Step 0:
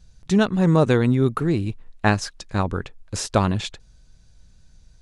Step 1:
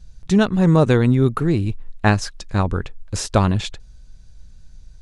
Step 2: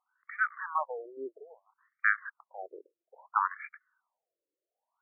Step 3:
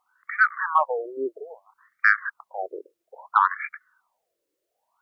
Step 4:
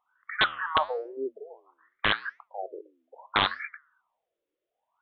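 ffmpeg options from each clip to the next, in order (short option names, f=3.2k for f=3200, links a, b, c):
-af "lowshelf=f=75:g=9.5,volume=1.5dB"
-af "lowshelf=f=790:t=q:w=1.5:g=-11.5,afftfilt=real='re*between(b*sr/1024,420*pow(1700/420,0.5+0.5*sin(2*PI*0.61*pts/sr))/1.41,420*pow(1700/420,0.5+0.5*sin(2*PI*0.61*pts/sr))*1.41)':imag='im*between(b*sr/1024,420*pow(1700/420,0.5+0.5*sin(2*PI*0.61*pts/sr))/1.41,420*pow(1700/420,0.5+0.5*sin(2*PI*0.61*pts/sr))*1.41)':win_size=1024:overlap=0.75,volume=-3.5dB"
-filter_complex "[0:a]asplit=2[a][b];[b]alimiter=limit=-19dB:level=0:latency=1:release=74,volume=0dB[c];[a][c]amix=inputs=2:normalize=0,acontrast=33"
-af "aresample=8000,aeval=exprs='(mod(2.99*val(0)+1,2)-1)/2.99':c=same,aresample=44100,flanger=delay=4.5:depth=9.6:regen=-87:speed=0.82:shape=triangular"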